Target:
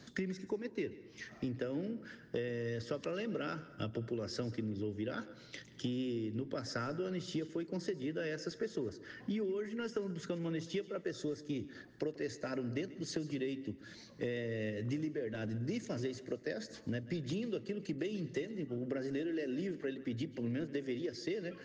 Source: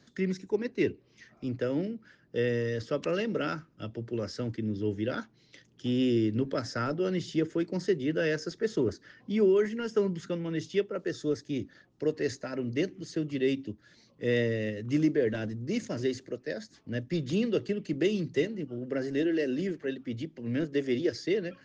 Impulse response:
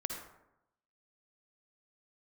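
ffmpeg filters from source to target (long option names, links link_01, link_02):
-filter_complex "[0:a]acompressor=threshold=-40dB:ratio=16,asplit=2[link_01][link_02];[1:a]atrim=start_sample=2205,adelay=136[link_03];[link_02][link_03]afir=irnorm=-1:irlink=0,volume=-16.5dB[link_04];[link_01][link_04]amix=inputs=2:normalize=0,volume=5.5dB"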